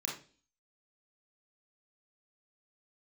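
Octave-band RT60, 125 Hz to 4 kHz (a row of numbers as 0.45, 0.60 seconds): 0.45, 0.55, 0.45, 0.35, 0.40, 0.45 seconds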